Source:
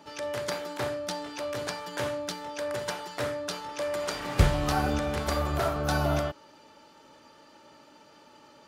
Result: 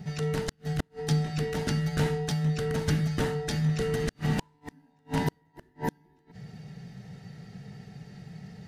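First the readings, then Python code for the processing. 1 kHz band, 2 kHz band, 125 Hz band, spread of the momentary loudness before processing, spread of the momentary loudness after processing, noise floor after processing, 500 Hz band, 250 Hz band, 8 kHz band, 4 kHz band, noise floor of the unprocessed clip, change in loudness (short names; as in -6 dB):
-6.5 dB, -3.0 dB, +4.5 dB, 9 LU, 18 LU, -66 dBFS, -2.5 dB, +3.5 dB, -2.5 dB, -3.0 dB, -56 dBFS, +0.5 dB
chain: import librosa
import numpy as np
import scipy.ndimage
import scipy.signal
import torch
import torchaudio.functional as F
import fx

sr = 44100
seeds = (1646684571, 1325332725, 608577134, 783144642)

y = fx.band_invert(x, sr, width_hz=1000)
y = fx.low_shelf_res(y, sr, hz=350.0, db=13.5, q=1.5)
y = fx.gate_flip(y, sr, shuts_db=-15.0, range_db=-41)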